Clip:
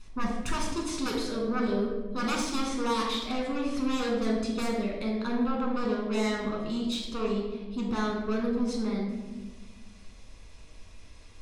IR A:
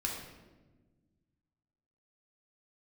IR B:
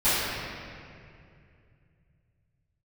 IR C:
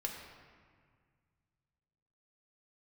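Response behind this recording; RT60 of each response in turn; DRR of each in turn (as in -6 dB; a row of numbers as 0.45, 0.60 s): A; 1.3, 2.4, 1.8 s; -1.5, -19.5, 0.0 dB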